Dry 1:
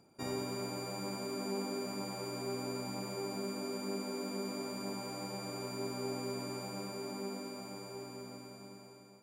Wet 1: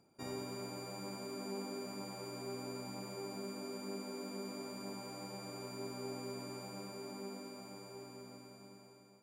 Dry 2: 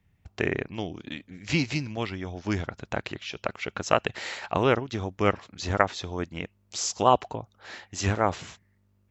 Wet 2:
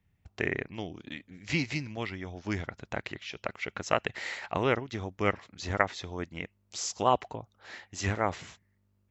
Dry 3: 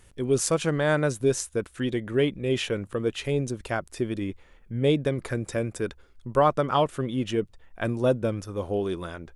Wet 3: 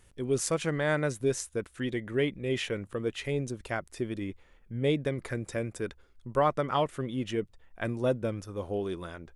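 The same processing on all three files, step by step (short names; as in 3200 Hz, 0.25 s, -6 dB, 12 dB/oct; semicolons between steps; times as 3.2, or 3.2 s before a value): dynamic EQ 2000 Hz, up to +7 dB, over -50 dBFS, Q 4.4; gain -5 dB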